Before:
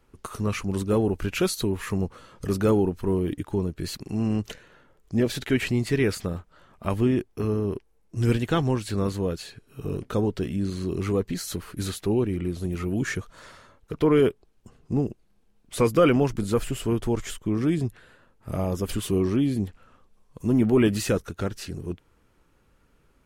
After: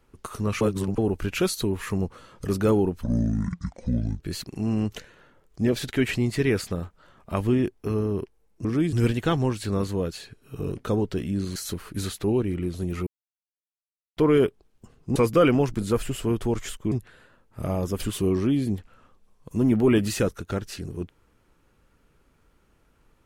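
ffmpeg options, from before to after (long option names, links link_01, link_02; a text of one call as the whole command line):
ffmpeg -i in.wav -filter_complex "[0:a]asplit=12[link_01][link_02][link_03][link_04][link_05][link_06][link_07][link_08][link_09][link_10][link_11][link_12];[link_01]atrim=end=0.612[link_13];[link_02]atrim=start=0.608:end=0.982,asetpts=PTS-STARTPTS,areverse[link_14];[link_03]atrim=start=0.978:end=3.034[link_15];[link_04]atrim=start=3.03:end=3.73,asetpts=PTS-STARTPTS,asetrate=26460,aresample=44100[link_16];[link_05]atrim=start=3.726:end=8.182[link_17];[link_06]atrim=start=17.528:end=17.812[link_18];[link_07]atrim=start=8.178:end=10.812[link_19];[link_08]atrim=start=11.378:end=12.89,asetpts=PTS-STARTPTS,afade=type=out:start_time=1.508:duration=0.004:curve=hsin[link_20];[link_09]atrim=start=12.89:end=13.99,asetpts=PTS-STARTPTS,volume=0[link_21];[link_10]atrim=start=13.99:end=14.982,asetpts=PTS-STARTPTS,afade=type=in:duration=0.004:curve=hsin[link_22];[link_11]atrim=start=15.768:end=17.532[link_23];[link_12]atrim=start=17.808[link_24];[link_13][link_14]acrossfade=duration=0.004:curve1=hsin:curve2=hsin[link_25];[link_25][link_15]acrossfade=duration=0.004:curve1=hsin:curve2=hsin[link_26];[link_26][link_16]acrossfade=duration=0.004:curve1=hsin:curve2=hsin[link_27];[link_27][link_17]acrossfade=duration=0.004:curve1=hsin:curve2=hsin[link_28];[link_28][link_18]acrossfade=duration=0.004:curve1=hsin:curve2=hsin[link_29];[link_29][link_19]acrossfade=duration=0.004:curve1=hsin:curve2=hsin[link_30];[link_20][link_21][link_22]concat=n=3:v=0:a=1[link_31];[link_30][link_31]acrossfade=duration=0.004:curve1=hsin:curve2=hsin[link_32];[link_32][link_23]acrossfade=duration=0.004:curve1=hsin:curve2=hsin[link_33];[link_33][link_24]acrossfade=duration=0.004:curve1=hsin:curve2=hsin" out.wav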